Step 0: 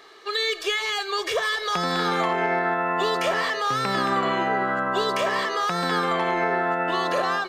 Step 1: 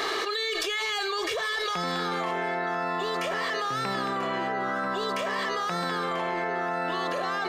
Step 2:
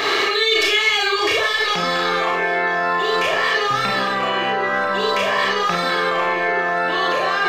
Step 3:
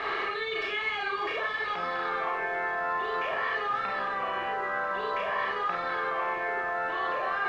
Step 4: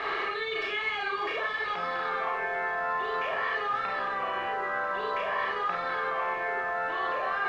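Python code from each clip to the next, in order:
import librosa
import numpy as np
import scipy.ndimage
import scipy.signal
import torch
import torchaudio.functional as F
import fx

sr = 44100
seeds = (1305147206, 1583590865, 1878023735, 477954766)

y1 = x + 10.0 ** (-13.5 / 20.0) * np.pad(x, (int(990 * sr / 1000.0), 0))[:len(x)]
y1 = fx.env_flatten(y1, sr, amount_pct=100)
y1 = F.gain(torch.from_numpy(y1), -8.5).numpy()
y2 = fx.graphic_eq_15(y1, sr, hz=(100, 2500, 10000), db=(9, 6, -6))
y2 = fx.rev_schroeder(y2, sr, rt60_s=0.35, comb_ms=28, drr_db=-1.0)
y2 = F.gain(torch.from_numpy(y2), 6.0).numpy()
y3 = fx.highpass(y2, sr, hz=1100.0, slope=6)
y3 = fx.dmg_noise_colour(y3, sr, seeds[0], colour='white', level_db=-35.0)
y3 = scipy.signal.sosfilt(scipy.signal.butter(2, 1500.0, 'lowpass', fs=sr, output='sos'), y3)
y3 = F.gain(torch.from_numpy(y3), -5.0).numpy()
y4 = fx.hum_notches(y3, sr, base_hz=50, count=7)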